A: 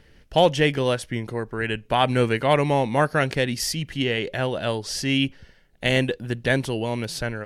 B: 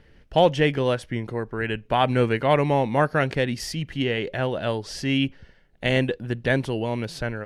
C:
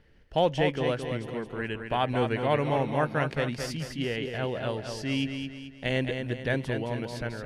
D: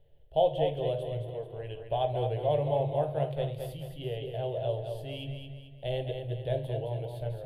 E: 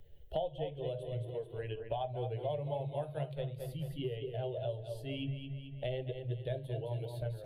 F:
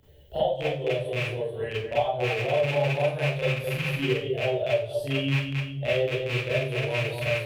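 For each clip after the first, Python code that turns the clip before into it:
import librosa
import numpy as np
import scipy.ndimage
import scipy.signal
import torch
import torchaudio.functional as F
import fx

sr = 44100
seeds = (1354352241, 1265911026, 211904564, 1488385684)

y1 = fx.high_shelf(x, sr, hz=4600.0, db=-11.0)
y2 = fx.echo_feedback(y1, sr, ms=218, feedback_pct=43, wet_db=-6.5)
y2 = F.gain(torch.from_numpy(y2), -6.5).numpy()
y3 = fx.curve_eq(y2, sr, hz=(140.0, 230.0, 340.0, 650.0, 1300.0, 2300.0, 3400.0, 5500.0, 13000.0), db=(0, -23, -6, 6, -21, -15, 0, -27, 5))
y3 = fx.room_shoebox(y3, sr, seeds[0], volume_m3=41.0, walls='mixed', distance_m=0.31)
y3 = F.gain(torch.from_numpy(y3), -4.0).numpy()
y4 = fx.bin_expand(y3, sr, power=1.5)
y4 = fx.band_squash(y4, sr, depth_pct=100)
y4 = F.gain(torch.from_numpy(y4), -4.0).numpy()
y5 = fx.rattle_buzz(y4, sr, strikes_db=-37.0, level_db=-27.0)
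y5 = scipy.signal.sosfilt(scipy.signal.butter(2, 55.0, 'highpass', fs=sr, output='sos'), y5)
y5 = fx.rev_schroeder(y5, sr, rt60_s=0.38, comb_ms=29, drr_db=-9.5)
y5 = F.gain(torch.from_numpy(y5), 2.0).numpy()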